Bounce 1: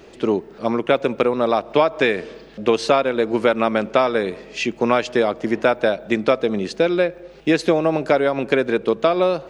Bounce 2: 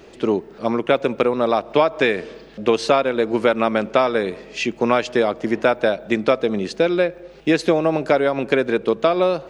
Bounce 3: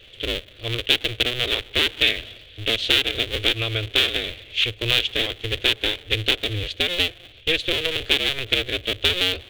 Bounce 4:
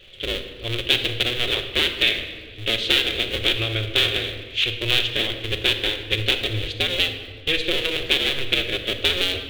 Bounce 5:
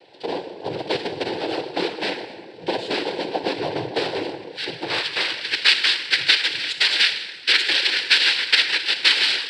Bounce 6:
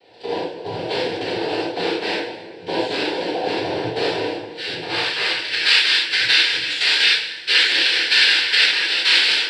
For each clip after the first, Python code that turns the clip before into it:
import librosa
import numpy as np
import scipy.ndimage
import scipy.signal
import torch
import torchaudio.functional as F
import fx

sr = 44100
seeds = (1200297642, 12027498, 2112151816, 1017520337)

y1 = x
y2 = fx.cycle_switch(y1, sr, every=2, mode='inverted')
y2 = fx.curve_eq(y2, sr, hz=(110.0, 170.0, 460.0, 910.0, 3400.0, 5000.0), db=(0, -23, -10, -26, 9, -13))
y2 = y2 * 10.0 ** (2.5 / 20.0)
y3 = fx.room_shoebox(y2, sr, seeds[0], volume_m3=1700.0, walls='mixed', distance_m=1.0)
y3 = y3 * 10.0 ** (-1.0 / 20.0)
y4 = fx.filter_sweep_bandpass(y3, sr, from_hz=540.0, to_hz=2400.0, start_s=4.57, end_s=5.53, q=1.2)
y4 = fx.noise_vocoder(y4, sr, seeds[1], bands=8)
y4 = y4 * 10.0 ** (7.0 / 20.0)
y5 = fx.rev_gated(y4, sr, seeds[2], gate_ms=130, shape='flat', drr_db=-7.5)
y5 = y5 * 10.0 ** (-5.5 / 20.0)